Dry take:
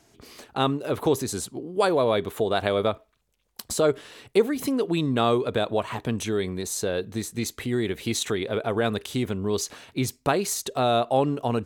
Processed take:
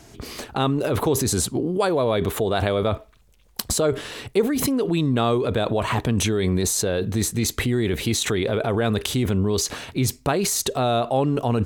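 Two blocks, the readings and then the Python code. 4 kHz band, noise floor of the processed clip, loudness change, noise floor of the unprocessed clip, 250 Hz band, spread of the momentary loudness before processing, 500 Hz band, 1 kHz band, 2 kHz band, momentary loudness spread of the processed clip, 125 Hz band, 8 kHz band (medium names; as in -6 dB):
+4.0 dB, -54 dBFS, +3.5 dB, -68 dBFS, +4.0 dB, 8 LU, +1.5 dB, +1.0 dB, +3.0 dB, 4 LU, +7.5 dB, +7.0 dB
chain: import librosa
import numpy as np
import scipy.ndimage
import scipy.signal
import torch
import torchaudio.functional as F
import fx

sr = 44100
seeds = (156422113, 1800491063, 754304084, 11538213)

p1 = fx.over_compress(x, sr, threshold_db=-33.0, ratio=-1.0)
p2 = x + (p1 * librosa.db_to_amplitude(2.5))
p3 = fx.low_shelf(p2, sr, hz=130.0, db=9.0)
y = p3 * librosa.db_to_amplitude(-1.5)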